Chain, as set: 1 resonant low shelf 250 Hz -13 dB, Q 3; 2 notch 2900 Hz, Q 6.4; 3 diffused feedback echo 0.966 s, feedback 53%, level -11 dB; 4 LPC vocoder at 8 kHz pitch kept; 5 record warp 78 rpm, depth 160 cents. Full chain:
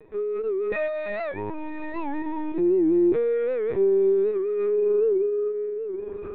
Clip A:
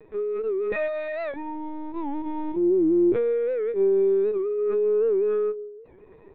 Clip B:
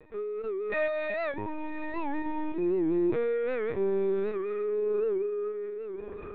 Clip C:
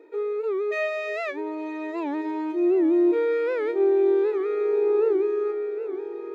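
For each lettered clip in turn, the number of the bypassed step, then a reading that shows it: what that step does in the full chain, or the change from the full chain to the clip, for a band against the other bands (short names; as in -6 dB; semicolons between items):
3, momentary loudness spread change +1 LU; 1, 500 Hz band -5.5 dB; 4, 2 kHz band +3.0 dB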